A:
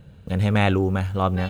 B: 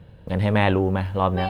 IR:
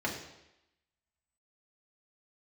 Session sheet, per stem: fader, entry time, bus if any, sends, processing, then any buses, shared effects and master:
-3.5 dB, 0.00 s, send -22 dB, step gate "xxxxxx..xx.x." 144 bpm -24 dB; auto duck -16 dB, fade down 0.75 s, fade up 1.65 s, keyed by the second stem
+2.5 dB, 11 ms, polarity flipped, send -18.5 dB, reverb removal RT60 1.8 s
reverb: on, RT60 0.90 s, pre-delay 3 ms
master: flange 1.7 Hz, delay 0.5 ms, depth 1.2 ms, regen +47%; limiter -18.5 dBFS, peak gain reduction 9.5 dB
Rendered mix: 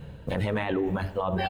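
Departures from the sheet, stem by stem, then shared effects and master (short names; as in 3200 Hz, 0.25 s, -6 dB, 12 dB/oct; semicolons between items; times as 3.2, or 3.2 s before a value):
stem A -3.5 dB -> +3.0 dB; master: missing flange 1.7 Hz, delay 0.5 ms, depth 1.2 ms, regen +47%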